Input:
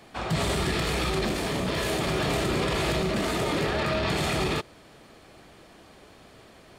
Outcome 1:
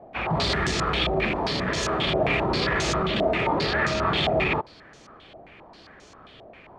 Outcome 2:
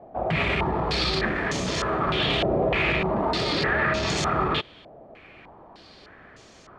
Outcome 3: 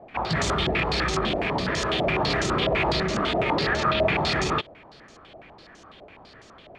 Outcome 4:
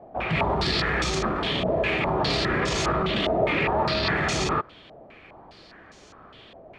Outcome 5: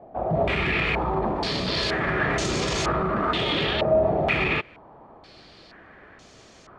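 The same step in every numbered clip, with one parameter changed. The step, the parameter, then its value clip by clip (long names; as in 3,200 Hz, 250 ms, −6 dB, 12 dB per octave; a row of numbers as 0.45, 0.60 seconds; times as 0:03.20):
low-pass on a step sequencer, speed: 7.5, 3.3, 12, 4.9, 2.1 Hertz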